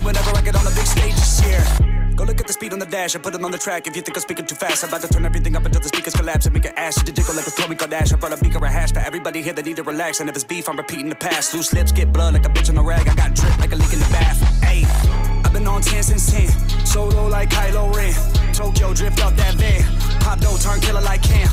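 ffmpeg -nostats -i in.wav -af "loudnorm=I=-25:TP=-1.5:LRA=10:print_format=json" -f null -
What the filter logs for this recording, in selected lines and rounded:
"input_i" : "-18.4",
"input_tp" : "-5.6",
"input_lra" : "4.1",
"input_thresh" : "-28.4",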